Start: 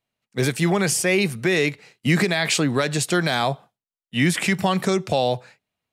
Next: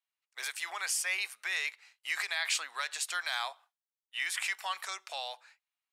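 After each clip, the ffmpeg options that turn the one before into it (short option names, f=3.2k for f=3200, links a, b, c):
-af "highpass=f=940:w=0.5412,highpass=f=940:w=1.3066,volume=-9dB"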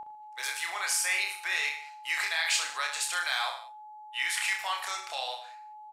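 -af "aeval=exprs='val(0)+0.01*sin(2*PI*850*n/s)':c=same,aecho=1:1:30|64.5|104.2|149.8|202.3:0.631|0.398|0.251|0.158|0.1,volume=2dB"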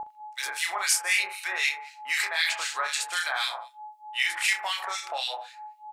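-filter_complex "[0:a]acrossover=split=1600[a][b];[a]aeval=exprs='val(0)*(1-1/2+1/2*cos(2*PI*3.9*n/s))':c=same[c];[b]aeval=exprs='val(0)*(1-1/2-1/2*cos(2*PI*3.9*n/s))':c=same[d];[c][d]amix=inputs=2:normalize=0,volume=8dB"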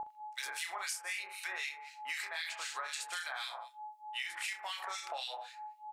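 -af "acompressor=threshold=-33dB:ratio=6,volume=-4dB"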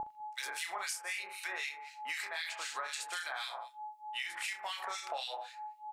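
-af "lowshelf=f=410:g=9.5"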